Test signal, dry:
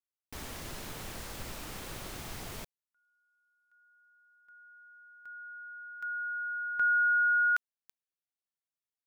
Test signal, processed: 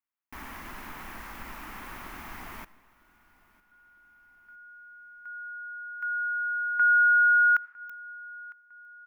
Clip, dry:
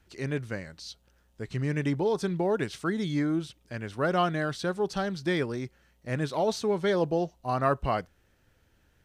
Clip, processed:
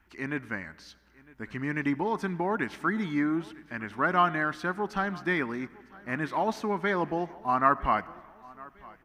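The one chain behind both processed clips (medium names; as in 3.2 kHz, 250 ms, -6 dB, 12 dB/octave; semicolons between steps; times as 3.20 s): graphic EQ 125/250/500/1000/2000/4000/8000 Hz -11/+6/-10/+8/+6/-8/-9 dB; on a send: feedback delay 955 ms, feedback 45%, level -23 dB; on the sum: algorithmic reverb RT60 1.5 s, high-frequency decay 0.65×, pre-delay 35 ms, DRR 19.5 dB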